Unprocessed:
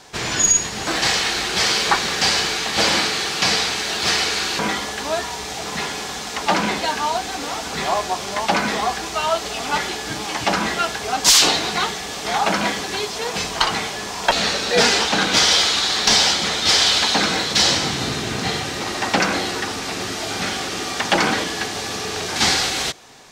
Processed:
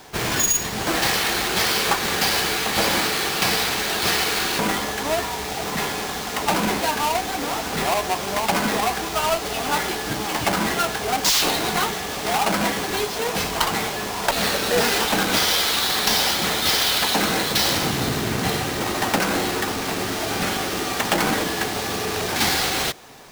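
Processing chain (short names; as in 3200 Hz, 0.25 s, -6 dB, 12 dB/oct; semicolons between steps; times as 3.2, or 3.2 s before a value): half-waves squared off; compressor 3:1, threshold -15 dBFS, peak gain reduction 6.5 dB; gain -3.5 dB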